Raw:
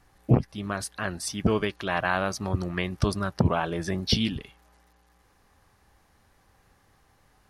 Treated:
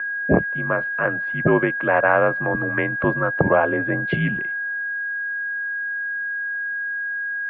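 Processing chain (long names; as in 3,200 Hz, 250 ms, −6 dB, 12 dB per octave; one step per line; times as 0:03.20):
steady tone 1,700 Hz −30 dBFS
dynamic equaliser 620 Hz, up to +6 dB, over −44 dBFS, Q 2.1
single-sideband voice off tune −60 Hz 210–2,300 Hz
level +6.5 dB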